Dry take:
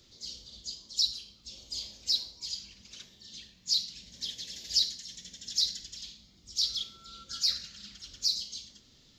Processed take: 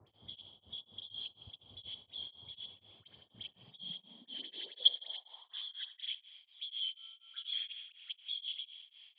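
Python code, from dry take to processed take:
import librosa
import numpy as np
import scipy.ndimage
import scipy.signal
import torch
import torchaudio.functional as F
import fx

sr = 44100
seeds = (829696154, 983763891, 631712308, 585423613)

y = fx.freq_compress(x, sr, knee_hz=3000.0, ratio=4.0)
y = fx.high_shelf(y, sr, hz=3400.0, db=7.0)
y = fx.notch(y, sr, hz=3600.0, q=5.5)
y = fx.level_steps(y, sr, step_db=22)
y = fx.dispersion(y, sr, late='highs', ms=77.0, hz=1500.0)
y = fx.dmg_noise_band(y, sr, seeds[0], low_hz=140.0, high_hz=960.0, level_db=-71.0)
y = fx.filter_sweep_highpass(y, sr, from_hz=97.0, to_hz=2400.0, start_s=3.48, end_s=6.17, q=4.8)
y = fx.echo_thinned(y, sr, ms=80, feedback_pct=71, hz=180.0, wet_db=-14)
y = y * np.abs(np.cos(np.pi * 4.1 * np.arange(len(y)) / sr))
y = y * 10.0 ** (1.0 / 20.0)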